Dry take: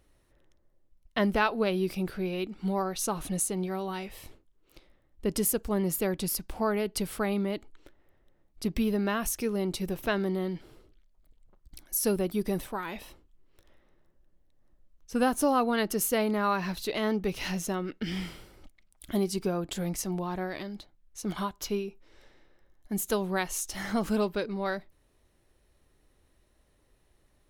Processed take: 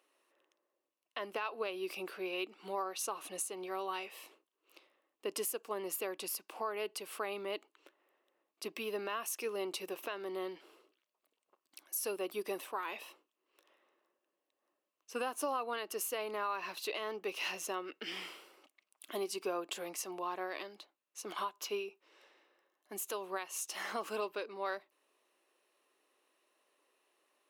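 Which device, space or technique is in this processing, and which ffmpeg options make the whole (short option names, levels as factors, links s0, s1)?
laptop speaker: -af "highpass=f=350:w=0.5412,highpass=f=350:w=1.3066,equalizer=f=1100:t=o:w=0.3:g=8,equalizer=f=2700:t=o:w=0.27:g=9,alimiter=limit=0.0794:level=0:latency=1:release=267,volume=0.596"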